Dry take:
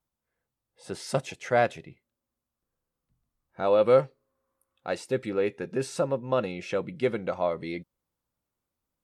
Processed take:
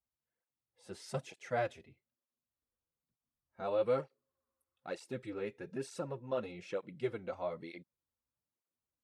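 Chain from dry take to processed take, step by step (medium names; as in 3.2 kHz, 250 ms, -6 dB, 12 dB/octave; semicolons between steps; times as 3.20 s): cancelling through-zero flanger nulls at 1.1 Hz, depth 7.1 ms; trim -8.5 dB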